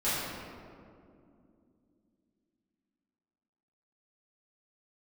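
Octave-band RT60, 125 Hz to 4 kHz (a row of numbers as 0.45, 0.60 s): 3.3, 4.1, 2.9, 2.1, 1.6, 1.1 s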